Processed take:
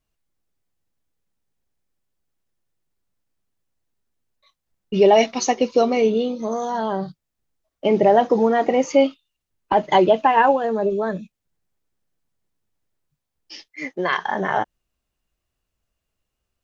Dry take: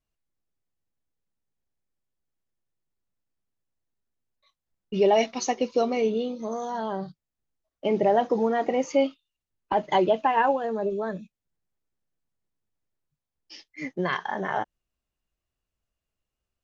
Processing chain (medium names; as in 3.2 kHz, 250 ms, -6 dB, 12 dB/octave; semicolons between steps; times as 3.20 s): 13.68–14.18 s: tone controls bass -13 dB, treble -1 dB; trim +6.5 dB